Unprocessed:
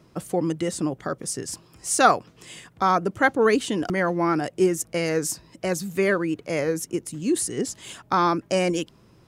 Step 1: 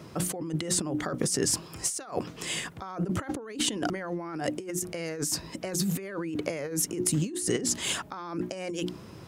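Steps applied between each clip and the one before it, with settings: HPF 56 Hz; notches 60/120/180/240/300/360 Hz; negative-ratio compressor -34 dBFS, ratio -1; gain +1.5 dB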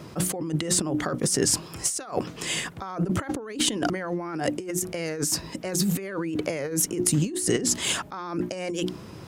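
added harmonics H 8 -41 dB, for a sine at -10.5 dBFS; wow and flutter 29 cents; attack slew limiter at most 400 dB/s; gain +4 dB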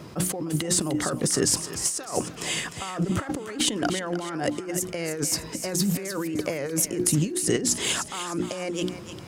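thinning echo 0.303 s, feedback 40%, high-pass 700 Hz, level -9 dB

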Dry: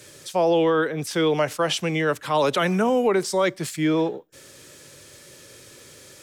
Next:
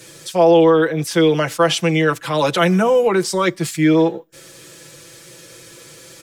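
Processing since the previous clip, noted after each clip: comb 6 ms, depth 75%; gain +3.5 dB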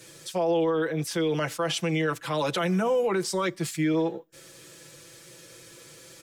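limiter -10.5 dBFS, peak gain reduction 6.5 dB; gain -7.5 dB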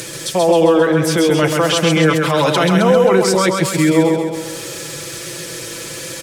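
in parallel at +3 dB: upward compressor, threshold -27 dBFS; on the sum: feedback echo 0.133 s, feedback 55%, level -4 dB; gain +3.5 dB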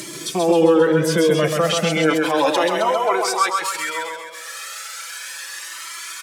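high-pass sweep 210 Hz -> 1300 Hz, 1.68–4.08; cascading flanger rising 0.34 Hz

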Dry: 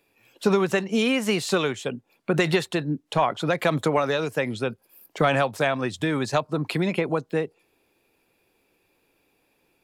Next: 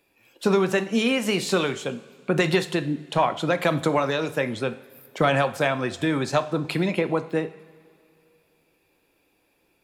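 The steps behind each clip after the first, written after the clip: two-slope reverb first 0.54 s, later 2.7 s, from -17 dB, DRR 9.5 dB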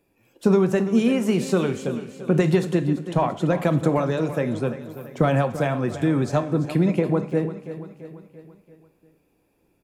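EQ curve 170 Hz 0 dB, 4000 Hz -16 dB, 6100 Hz -10 dB; on a send: feedback echo 0.339 s, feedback 52%, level -13 dB; on the sum: gain +6 dB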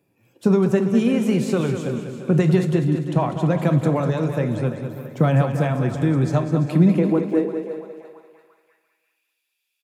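high-pass sweep 120 Hz -> 3200 Hz, 6.5–9.33; feedback echo 0.198 s, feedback 44%, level -9 dB; gain -1.5 dB

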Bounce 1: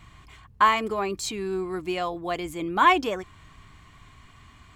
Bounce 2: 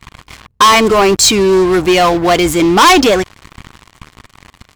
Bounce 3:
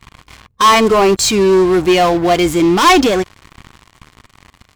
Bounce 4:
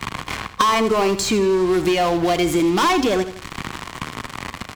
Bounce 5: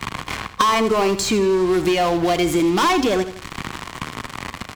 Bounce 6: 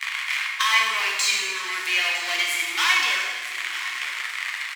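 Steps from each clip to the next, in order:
sample leveller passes 5; dynamic EQ 5500 Hz, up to +4 dB, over -33 dBFS, Q 0.93; gain +3.5 dB
harmonic-percussive split harmonic +7 dB; gain -7.5 dB
compressor 5:1, threshold -20 dBFS, peak gain reduction 12 dB; feedback echo 81 ms, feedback 34%, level -13 dB; three-band squash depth 70%; gain +2.5 dB
nothing audible
resonant high-pass 2000 Hz, resonance Q 2.4; echo 0.956 s -14.5 dB; plate-style reverb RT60 1.5 s, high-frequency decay 0.8×, DRR -1.5 dB; gain -3 dB

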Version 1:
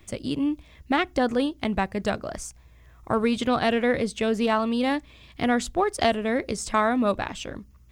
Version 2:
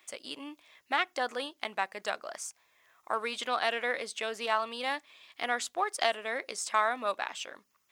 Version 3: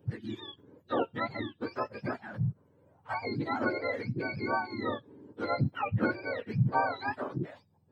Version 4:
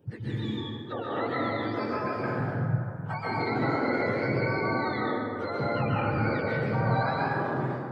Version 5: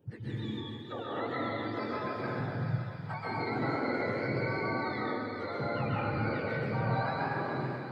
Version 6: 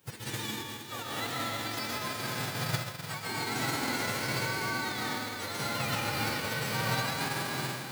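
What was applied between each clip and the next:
HPF 790 Hz 12 dB/oct; gain -2.5 dB
spectrum mirrored in octaves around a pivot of 1000 Hz; high shelf 8100 Hz +10.5 dB
limiter -26 dBFS, peak gain reduction 11 dB; plate-style reverb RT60 2.6 s, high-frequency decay 0.4×, pre-delay 0.115 s, DRR -7 dB
thin delay 0.428 s, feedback 64%, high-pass 2100 Hz, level -6 dB; gain -5 dB
spectral whitening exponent 0.3

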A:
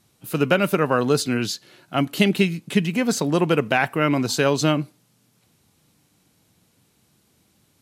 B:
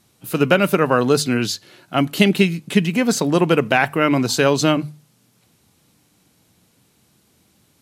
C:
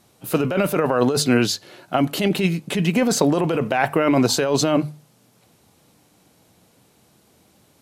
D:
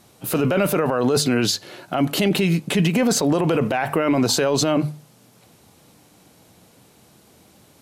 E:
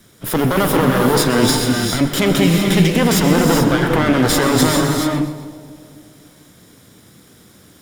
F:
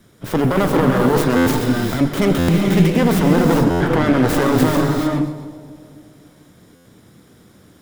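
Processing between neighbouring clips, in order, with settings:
notches 50/100/150 Hz; gain +3.5 dB
bell 630 Hz +7 dB 1.6 oct; negative-ratio compressor -15 dBFS, ratio -1; gain -2.5 dB
limiter -15 dBFS, peak gain reduction 11.5 dB; gain +4.5 dB
minimum comb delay 0.57 ms; split-band echo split 840 Hz, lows 0.253 s, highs 0.127 s, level -14.5 dB; non-linear reverb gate 0.46 s rising, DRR 1.5 dB; gain +4.5 dB
tracing distortion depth 0.36 ms; high shelf 2100 Hz -8 dB; stuck buffer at 1.36/2.38/3.7/6.75, samples 512, times 8

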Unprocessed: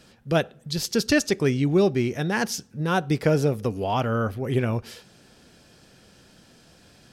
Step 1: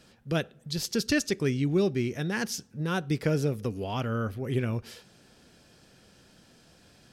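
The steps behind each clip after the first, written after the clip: dynamic EQ 780 Hz, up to -7 dB, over -37 dBFS, Q 1.2; gain -4 dB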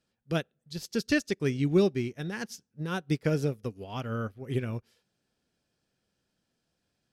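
in parallel at -1 dB: limiter -22.5 dBFS, peak gain reduction 8.5 dB; on the sum: upward expander 2.5:1, over -36 dBFS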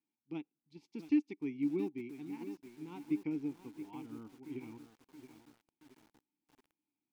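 vowel filter u; lo-fi delay 0.674 s, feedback 55%, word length 9-bit, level -10.5 dB; gain -1 dB

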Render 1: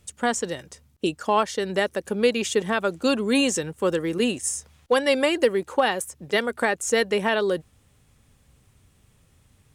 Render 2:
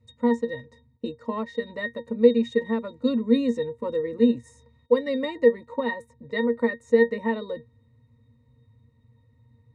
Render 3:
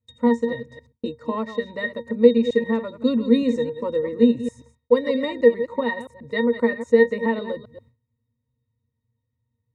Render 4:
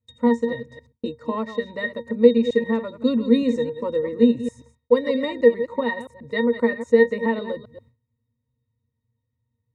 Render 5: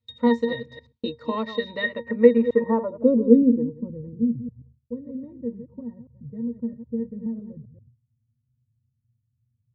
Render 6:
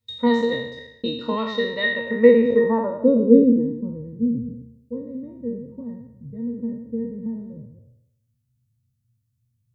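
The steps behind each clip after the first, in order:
octave resonator A#, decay 0.12 s; gain +8.5 dB
reverse delay 0.132 s, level -11.5 dB; gate with hold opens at -45 dBFS; gain +3 dB
nothing audible
low-pass sweep 4000 Hz -> 150 Hz, 1.73–4.04; gain -1 dB
spectral trails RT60 0.75 s; high shelf 3700 Hz +7 dB

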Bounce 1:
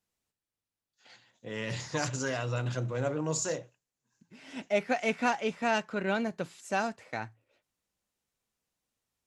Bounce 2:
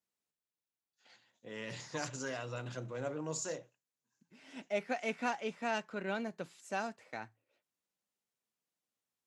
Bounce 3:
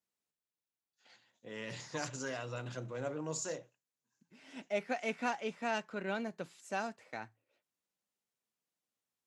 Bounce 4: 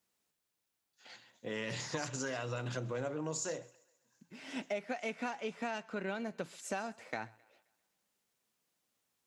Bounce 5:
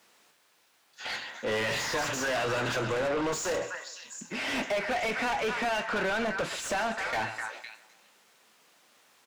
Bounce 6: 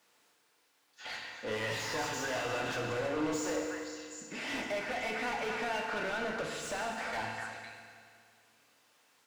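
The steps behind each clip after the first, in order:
HPF 150 Hz 12 dB/oct; gain -7 dB
nothing audible
compressor 6:1, threshold -44 dBFS, peak gain reduction 14.5 dB; thinning echo 0.132 s, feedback 53%, high-pass 350 Hz, level -23 dB; gain +9 dB
delay with a stepping band-pass 0.255 s, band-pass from 1400 Hz, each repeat 1.4 oct, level -11 dB; overdrive pedal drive 32 dB, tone 2700 Hz, clips at -21.5 dBFS; doubler 28 ms -13 dB
FDN reverb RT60 2.3 s, low-frequency decay 1×, high-frequency decay 0.85×, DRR 2 dB; gain -7.5 dB

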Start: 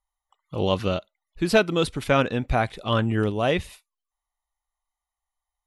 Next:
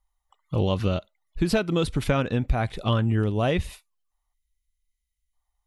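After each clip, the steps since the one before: spectral delete 4.34–5.33, 280–1900 Hz; low shelf 170 Hz +10.5 dB; compressor, threshold -21 dBFS, peak gain reduction 10.5 dB; gain +2 dB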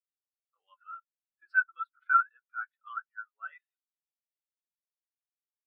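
resonant high-pass 1400 Hz, resonance Q 6; flange 0.42 Hz, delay 2.2 ms, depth 8.4 ms, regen -41%; spectral expander 2.5:1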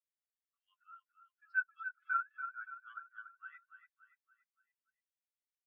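ladder high-pass 1500 Hz, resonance 45%; on a send: feedback echo 0.286 s, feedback 45%, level -9 dB; on the sum: gain -1.5 dB

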